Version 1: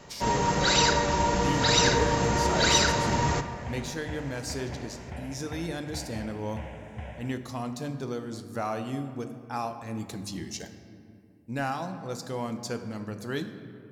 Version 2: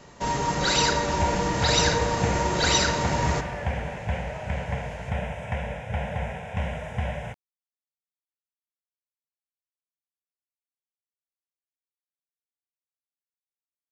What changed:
speech: muted; second sound +11.0 dB

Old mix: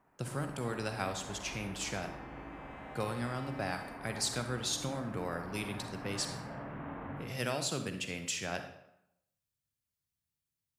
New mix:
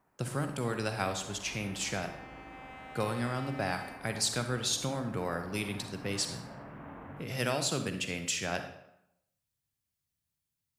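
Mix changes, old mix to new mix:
speech +3.5 dB; first sound: send -6.5 dB; second sound +5.5 dB

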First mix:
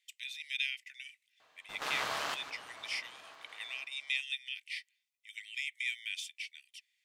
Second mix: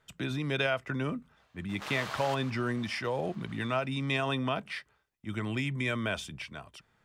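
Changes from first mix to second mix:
speech: remove steep high-pass 2 kHz 72 dB/octave; background -3.5 dB

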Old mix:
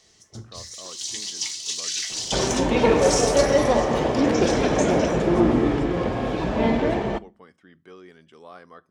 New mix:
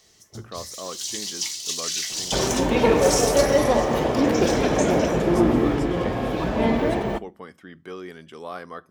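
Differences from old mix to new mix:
speech +9.0 dB; master: remove Savitzky-Golay filter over 9 samples

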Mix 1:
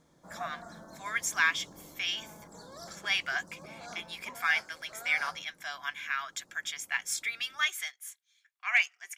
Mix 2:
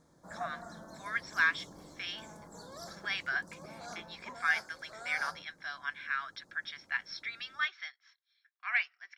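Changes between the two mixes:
speech: add rippled Chebyshev low-pass 5.6 kHz, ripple 9 dB; background: remove hum notches 50/100 Hz

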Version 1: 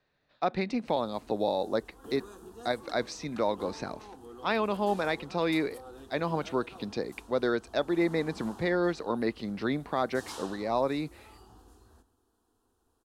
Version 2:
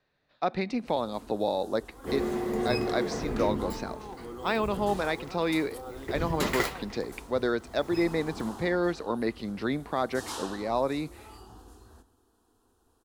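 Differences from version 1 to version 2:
speech: send on; first sound +5.5 dB; second sound: unmuted

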